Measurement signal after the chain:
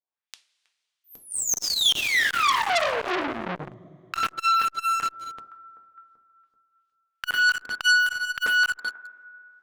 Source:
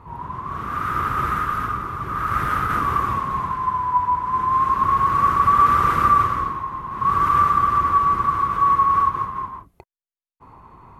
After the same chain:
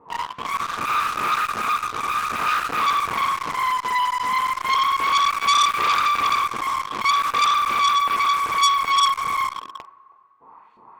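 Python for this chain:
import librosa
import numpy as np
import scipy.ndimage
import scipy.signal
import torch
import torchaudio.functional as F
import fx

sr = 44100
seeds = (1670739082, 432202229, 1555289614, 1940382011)

p1 = fx.low_shelf(x, sr, hz=96.0, db=-8.0)
p2 = p1 + fx.echo_single(p1, sr, ms=320, db=-17.0, dry=0)
p3 = fx.filter_lfo_bandpass(p2, sr, shape='saw_up', hz=2.6, low_hz=410.0, high_hz=4800.0, q=1.3)
p4 = scipy.signal.sosfilt(scipy.signal.butter(4, 10000.0, 'lowpass', fs=sr, output='sos'), p3)
p5 = fx.rev_double_slope(p4, sr, seeds[0], early_s=0.31, late_s=2.5, knee_db=-18, drr_db=1.5)
p6 = fx.fuzz(p5, sr, gain_db=36.0, gate_db=-36.0)
p7 = p5 + F.gain(torch.from_numpy(p6), -8.0).numpy()
p8 = fx.dynamic_eq(p7, sr, hz=2500.0, q=1.0, threshold_db=-28.0, ratio=4.0, max_db=-4)
y = fx.transformer_sat(p8, sr, knee_hz=3600.0)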